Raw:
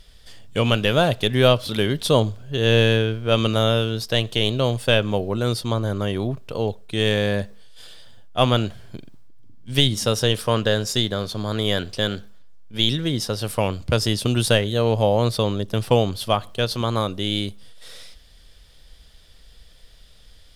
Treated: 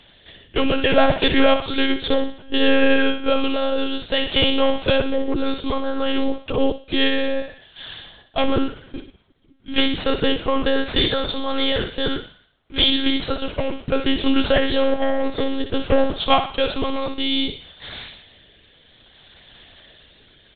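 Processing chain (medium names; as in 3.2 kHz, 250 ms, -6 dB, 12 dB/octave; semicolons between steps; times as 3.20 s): tracing distortion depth 0.068 ms; low-pass that closes with the level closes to 2 kHz, closed at -14 dBFS; high-pass 160 Hz 12 dB/octave; comb 2.8 ms, depth 50%; in parallel at -2.5 dB: compression, threshold -29 dBFS, peak gain reduction 16 dB; on the sum: hard clipper -12.5 dBFS, distortion -14 dB; rotary cabinet horn 0.6 Hz; on a send: thinning echo 62 ms, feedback 51%, high-pass 790 Hz, level -6 dB; on the sum: monotone LPC vocoder at 8 kHz 270 Hz; trim +5.5 dB; MP3 64 kbps 22.05 kHz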